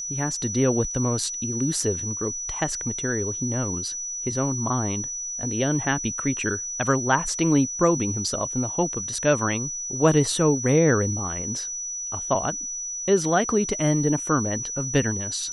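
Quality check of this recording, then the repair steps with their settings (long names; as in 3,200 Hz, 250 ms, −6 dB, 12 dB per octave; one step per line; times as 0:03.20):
whistle 5,900 Hz −29 dBFS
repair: notch filter 5,900 Hz, Q 30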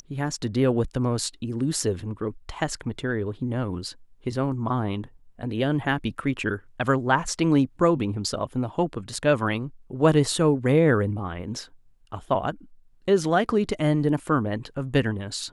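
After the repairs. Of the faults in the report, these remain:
none of them is left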